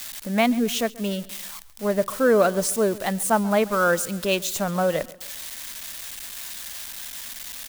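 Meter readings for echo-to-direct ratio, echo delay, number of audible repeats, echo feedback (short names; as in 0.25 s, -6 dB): -19.5 dB, 0.135 s, 2, 42%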